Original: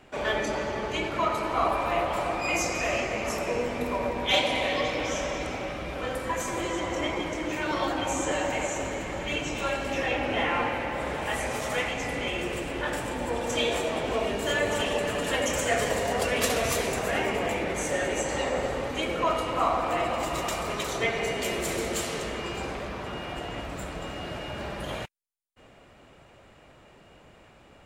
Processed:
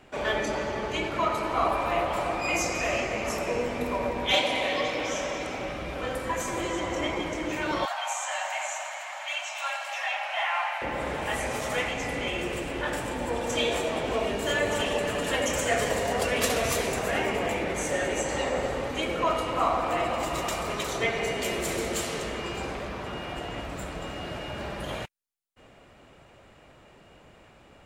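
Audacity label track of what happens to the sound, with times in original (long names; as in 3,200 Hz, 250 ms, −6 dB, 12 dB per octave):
4.350000	5.580000	low-shelf EQ 110 Hz −10.5 dB
7.850000	10.820000	Butterworth high-pass 620 Hz 96 dB per octave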